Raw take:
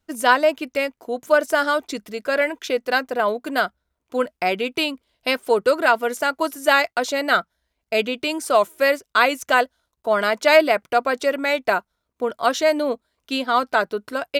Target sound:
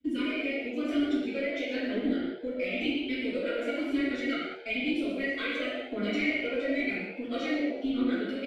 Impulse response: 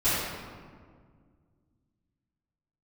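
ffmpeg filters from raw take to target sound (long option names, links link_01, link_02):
-filter_complex "[0:a]asplit=3[link_01][link_02][link_03];[link_01]bandpass=frequency=270:width_type=q:width=8,volume=0dB[link_04];[link_02]bandpass=frequency=2290:width_type=q:width=8,volume=-6dB[link_05];[link_03]bandpass=frequency=3010:width_type=q:width=8,volume=-9dB[link_06];[link_04][link_05][link_06]amix=inputs=3:normalize=0,equalizer=frequency=510:width_type=o:width=0.2:gain=12,bandreject=frequency=1700:width=22,aphaser=in_gain=1:out_gain=1:delay=2.2:decay=0.65:speed=0.59:type=triangular,acrossover=split=120[link_07][link_08];[link_08]acompressor=threshold=-45dB:ratio=3[link_09];[link_07][link_09]amix=inputs=2:normalize=0,atempo=1.7,asplit=5[link_10][link_11][link_12][link_13][link_14];[link_11]adelay=121,afreqshift=93,volume=-11.5dB[link_15];[link_12]adelay=242,afreqshift=186,volume=-19.2dB[link_16];[link_13]adelay=363,afreqshift=279,volume=-27dB[link_17];[link_14]adelay=484,afreqshift=372,volume=-34.7dB[link_18];[link_10][link_15][link_16][link_17][link_18]amix=inputs=5:normalize=0[link_19];[1:a]atrim=start_sample=2205,afade=type=out:start_time=0.28:duration=0.01,atrim=end_sample=12789[link_20];[link_19][link_20]afir=irnorm=-1:irlink=0"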